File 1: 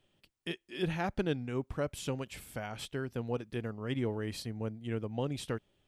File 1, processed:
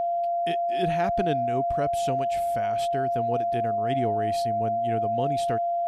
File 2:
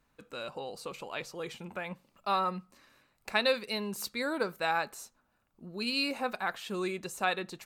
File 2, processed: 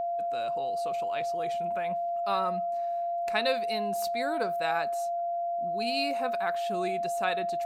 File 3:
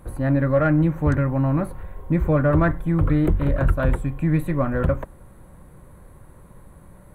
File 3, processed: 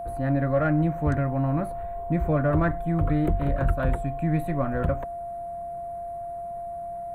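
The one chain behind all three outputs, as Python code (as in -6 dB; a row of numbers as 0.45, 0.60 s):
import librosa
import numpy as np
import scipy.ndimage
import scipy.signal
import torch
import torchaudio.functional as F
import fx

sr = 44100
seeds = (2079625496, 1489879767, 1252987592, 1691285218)

y = x + 10.0 ** (-27.0 / 20.0) * np.sin(2.0 * np.pi * 690.0 * np.arange(len(x)) / sr)
y = librosa.util.normalize(y) * 10.0 ** (-12 / 20.0)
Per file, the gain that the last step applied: +4.0, -1.0, -4.5 dB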